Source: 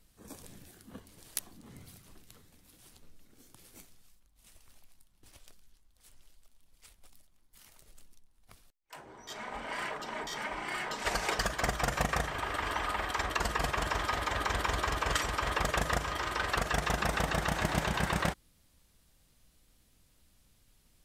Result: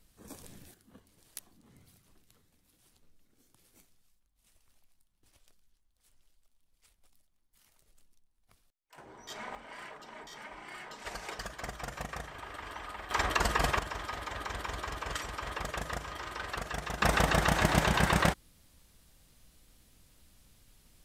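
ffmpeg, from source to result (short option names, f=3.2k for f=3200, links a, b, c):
-af "asetnsamples=n=441:p=0,asendcmd='0.74 volume volume -9dB;8.98 volume volume -0.5dB;9.55 volume volume -9.5dB;13.11 volume volume 3dB;13.79 volume volume -6.5dB;17.02 volume volume 4.5dB',volume=0dB"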